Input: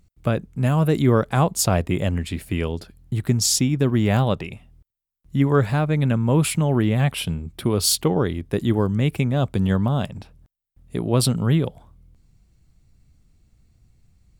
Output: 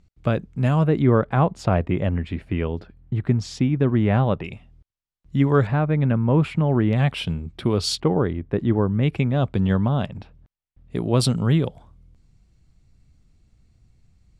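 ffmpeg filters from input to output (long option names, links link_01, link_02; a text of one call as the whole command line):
ffmpeg -i in.wav -af "asetnsamples=nb_out_samples=441:pad=0,asendcmd='0.84 lowpass f 2200;4.44 lowpass f 5400;5.67 lowpass f 2100;6.93 lowpass f 4700;8 lowpass f 1900;9.03 lowpass f 3700;10.96 lowpass f 7600',lowpass=5500" out.wav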